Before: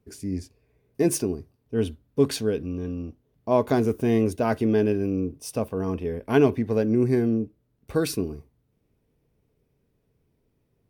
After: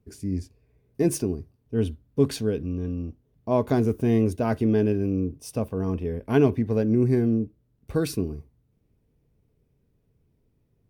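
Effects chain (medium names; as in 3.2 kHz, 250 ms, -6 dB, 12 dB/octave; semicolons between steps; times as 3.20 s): bass shelf 230 Hz +8.5 dB; trim -3.5 dB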